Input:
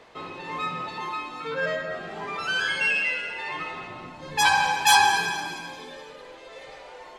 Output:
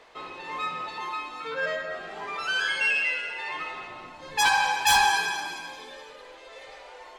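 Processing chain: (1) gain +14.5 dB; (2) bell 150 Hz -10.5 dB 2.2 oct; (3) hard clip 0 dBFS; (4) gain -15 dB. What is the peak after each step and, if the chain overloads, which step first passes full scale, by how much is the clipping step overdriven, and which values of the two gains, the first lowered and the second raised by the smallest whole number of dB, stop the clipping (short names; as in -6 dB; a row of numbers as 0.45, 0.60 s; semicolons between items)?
+9.5, +10.0, 0.0, -15.0 dBFS; step 1, 10.0 dB; step 1 +4.5 dB, step 4 -5 dB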